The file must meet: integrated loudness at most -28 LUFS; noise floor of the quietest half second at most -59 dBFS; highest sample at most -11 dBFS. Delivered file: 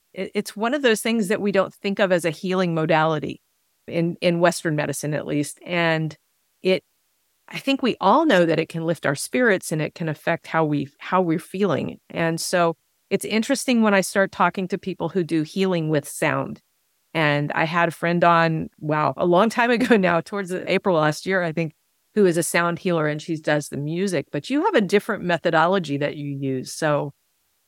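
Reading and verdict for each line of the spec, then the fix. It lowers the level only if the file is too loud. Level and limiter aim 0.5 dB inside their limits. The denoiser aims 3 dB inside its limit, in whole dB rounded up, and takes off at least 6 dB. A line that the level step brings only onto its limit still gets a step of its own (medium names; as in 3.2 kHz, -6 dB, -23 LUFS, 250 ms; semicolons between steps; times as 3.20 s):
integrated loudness -21.5 LUFS: fail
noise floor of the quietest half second -68 dBFS: pass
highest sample -4.5 dBFS: fail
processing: trim -7 dB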